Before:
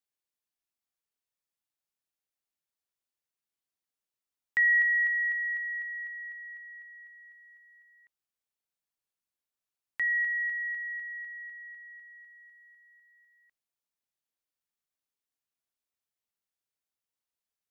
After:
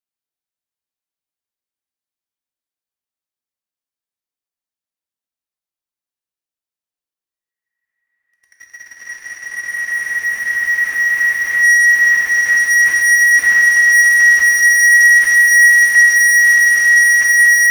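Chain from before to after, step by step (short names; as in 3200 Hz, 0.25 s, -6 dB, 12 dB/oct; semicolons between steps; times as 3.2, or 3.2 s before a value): Paulstretch 17×, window 1.00 s, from 3.64; sample leveller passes 5; non-linear reverb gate 0.43 s falling, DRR 1.5 dB; gain +6.5 dB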